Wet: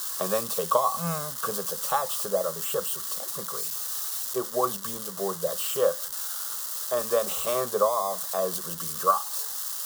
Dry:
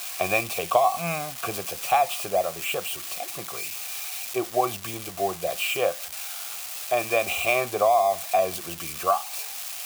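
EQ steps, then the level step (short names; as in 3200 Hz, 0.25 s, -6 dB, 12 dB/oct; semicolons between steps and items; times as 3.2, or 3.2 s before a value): fixed phaser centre 480 Hz, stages 8; +3.0 dB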